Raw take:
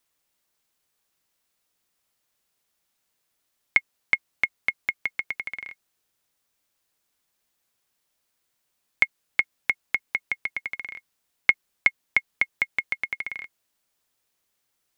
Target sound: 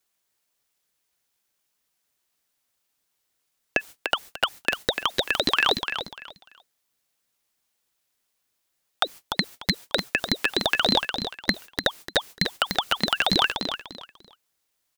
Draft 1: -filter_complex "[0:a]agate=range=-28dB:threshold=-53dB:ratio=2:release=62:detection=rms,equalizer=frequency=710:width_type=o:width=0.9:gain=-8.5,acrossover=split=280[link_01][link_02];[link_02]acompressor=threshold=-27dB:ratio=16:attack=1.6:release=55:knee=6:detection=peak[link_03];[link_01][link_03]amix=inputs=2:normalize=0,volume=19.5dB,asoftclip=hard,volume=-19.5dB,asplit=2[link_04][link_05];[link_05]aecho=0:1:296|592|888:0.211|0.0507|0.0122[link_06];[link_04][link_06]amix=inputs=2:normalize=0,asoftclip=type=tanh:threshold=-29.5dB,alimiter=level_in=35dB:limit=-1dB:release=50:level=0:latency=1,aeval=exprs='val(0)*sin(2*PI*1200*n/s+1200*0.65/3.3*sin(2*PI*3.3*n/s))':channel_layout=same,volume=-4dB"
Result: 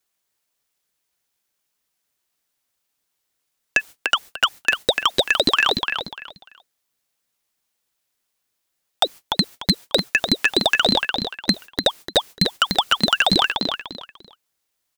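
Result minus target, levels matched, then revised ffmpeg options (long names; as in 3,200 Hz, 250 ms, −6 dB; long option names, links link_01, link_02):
downward compressor: peak gain reduction −9 dB
-filter_complex "[0:a]agate=range=-28dB:threshold=-53dB:ratio=2:release=62:detection=rms,equalizer=frequency=710:width_type=o:width=0.9:gain=-8.5,acrossover=split=280[link_01][link_02];[link_02]acompressor=threshold=-36.5dB:ratio=16:attack=1.6:release=55:knee=6:detection=peak[link_03];[link_01][link_03]amix=inputs=2:normalize=0,volume=19.5dB,asoftclip=hard,volume=-19.5dB,asplit=2[link_04][link_05];[link_05]aecho=0:1:296|592|888:0.211|0.0507|0.0122[link_06];[link_04][link_06]amix=inputs=2:normalize=0,asoftclip=type=tanh:threshold=-29.5dB,alimiter=level_in=35dB:limit=-1dB:release=50:level=0:latency=1,aeval=exprs='val(0)*sin(2*PI*1200*n/s+1200*0.65/3.3*sin(2*PI*3.3*n/s))':channel_layout=same,volume=-4dB"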